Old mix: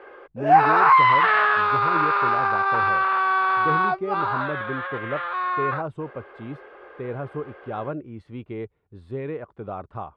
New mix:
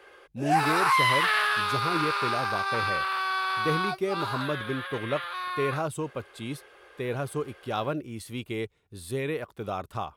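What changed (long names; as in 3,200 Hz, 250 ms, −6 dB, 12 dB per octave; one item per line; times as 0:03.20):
background −10.0 dB
master: remove low-pass filter 1,400 Hz 12 dB per octave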